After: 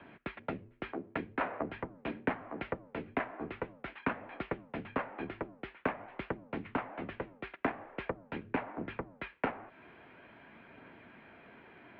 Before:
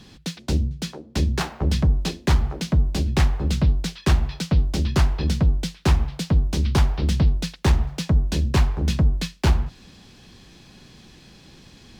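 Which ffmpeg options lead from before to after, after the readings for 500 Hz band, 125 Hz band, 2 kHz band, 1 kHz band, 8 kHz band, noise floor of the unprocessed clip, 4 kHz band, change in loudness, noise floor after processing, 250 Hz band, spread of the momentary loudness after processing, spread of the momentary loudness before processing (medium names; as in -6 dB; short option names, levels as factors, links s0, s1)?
-7.0 dB, -28.5 dB, -6.0 dB, -6.0 dB, under -40 dB, -49 dBFS, -23.5 dB, -17.0 dB, -62 dBFS, -13.5 dB, 18 LU, 4 LU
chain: -af "acompressor=threshold=0.0447:ratio=2.5,highpass=f=370:t=q:w=0.5412,highpass=f=370:t=q:w=1.307,lowpass=f=2400:t=q:w=0.5176,lowpass=f=2400:t=q:w=0.7071,lowpass=f=2400:t=q:w=1.932,afreqshift=-120,aphaser=in_gain=1:out_gain=1:delay=3.1:decay=0.21:speed=0.46:type=triangular,volume=1.12"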